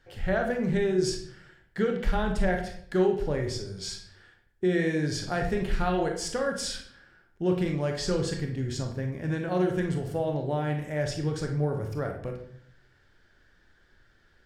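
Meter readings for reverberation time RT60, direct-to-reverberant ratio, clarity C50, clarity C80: 0.60 s, 2.5 dB, 6.5 dB, 10.5 dB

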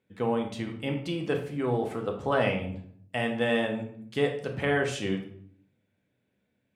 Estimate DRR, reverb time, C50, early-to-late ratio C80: 2.0 dB, 0.60 s, 8.0 dB, 11.5 dB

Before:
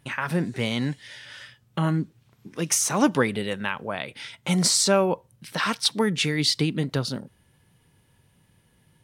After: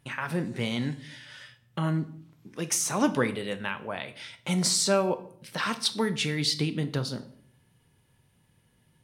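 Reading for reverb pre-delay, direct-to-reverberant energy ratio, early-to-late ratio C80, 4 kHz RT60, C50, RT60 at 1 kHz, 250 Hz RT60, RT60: 5 ms, 10.0 dB, 18.5 dB, 0.45 s, 15.0 dB, 0.60 s, 0.75 s, 0.65 s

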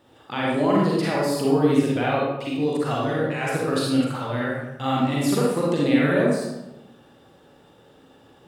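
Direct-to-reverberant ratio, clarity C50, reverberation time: -5.0 dB, -2.0 dB, 1.0 s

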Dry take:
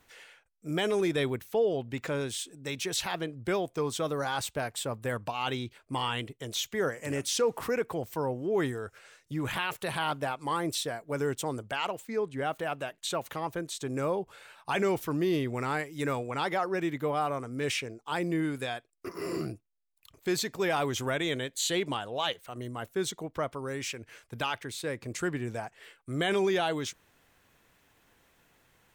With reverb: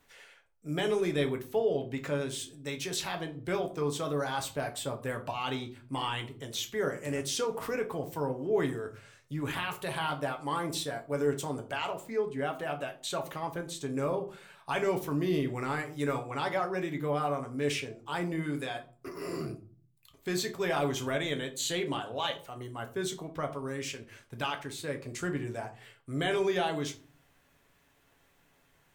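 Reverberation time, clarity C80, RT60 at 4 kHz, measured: 0.40 s, 19.0 dB, 0.25 s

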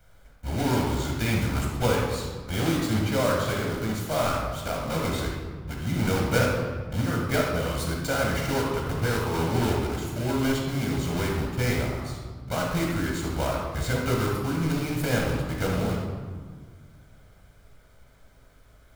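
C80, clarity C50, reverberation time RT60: 3.5 dB, 0.5 dB, 1.6 s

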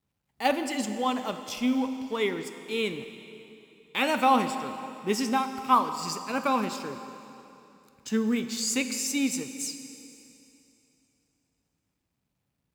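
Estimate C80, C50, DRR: 9.5 dB, 9.0 dB, 8.0 dB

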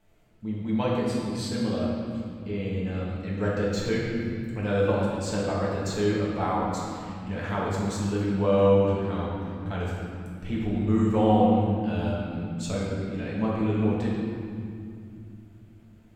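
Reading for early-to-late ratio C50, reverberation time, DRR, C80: -1.5 dB, 2.4 s, -6.0 dB, 0.5 dB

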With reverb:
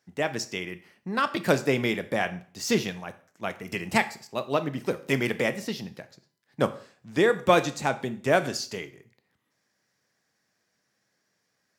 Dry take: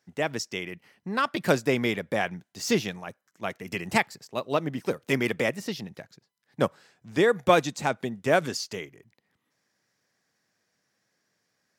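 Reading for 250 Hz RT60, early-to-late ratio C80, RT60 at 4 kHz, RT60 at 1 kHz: 0.50 s, 19.0 dB, 0.45 s, 0.45 s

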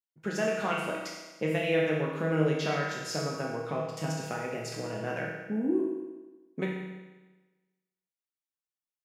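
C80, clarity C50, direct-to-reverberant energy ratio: 3.5 dB, 1.0 dB, -4.0 dB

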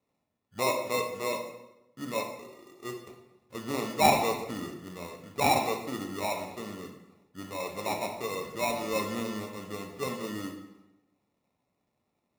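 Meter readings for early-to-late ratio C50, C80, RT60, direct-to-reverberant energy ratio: 6.0 dB, 9.0 dB, 0.95 s, 1.5 dB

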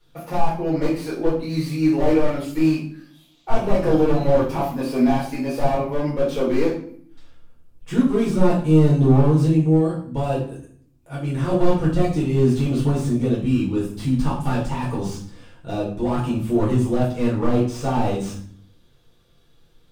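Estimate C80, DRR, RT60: 10.0 dB, -7.0 dB, 0.55 s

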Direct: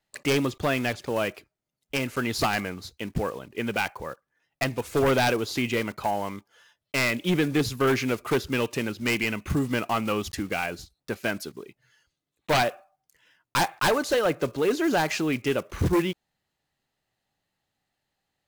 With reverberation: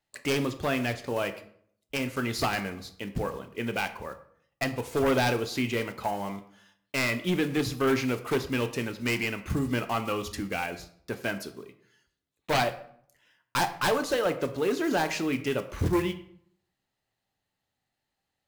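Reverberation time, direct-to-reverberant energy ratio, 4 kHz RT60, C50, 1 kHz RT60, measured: 0.60 s, 8.0 dB, 0.45 s, 13.0 dB, 0.60 s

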